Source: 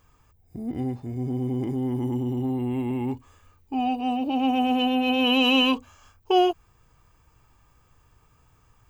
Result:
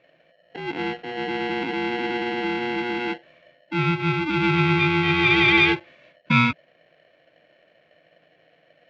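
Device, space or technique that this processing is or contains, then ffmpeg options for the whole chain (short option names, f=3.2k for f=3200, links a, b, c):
ring modulator pedal into a guitar cabinet: -af "aeval=exprs='val(0)*sgn(sin(2*PI*600*n/s))':c=same,highpass=82,equalizer=f=160:t=q:w=4:g=10,equalizer=f=310:t=q:w=4:g=5,equalizer=f=940:t=q:w=4:g=-7,equalizer=f=2.4k:t=q:w=4:g=10,lowpass=f=3.7k:w=0.5412,lowpass=f=3.7k:w=1.3066"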